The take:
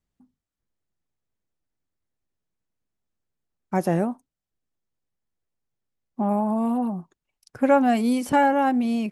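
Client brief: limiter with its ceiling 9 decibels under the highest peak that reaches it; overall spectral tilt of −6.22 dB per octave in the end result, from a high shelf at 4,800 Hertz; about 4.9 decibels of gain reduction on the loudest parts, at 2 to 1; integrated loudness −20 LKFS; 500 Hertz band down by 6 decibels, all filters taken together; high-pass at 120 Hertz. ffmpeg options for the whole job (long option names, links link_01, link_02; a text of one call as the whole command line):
ffmpeg -i in.wav -af "highpass=120,equalizer=frequency=500:width_type=o:gain=-7,highshelf=frequency=4800:gain=-8.5,acompressor=threshold=-26dB:ratio=2,volume=12.5dB,alimiter=limit=-12dB:level=0:latency=1" out.wav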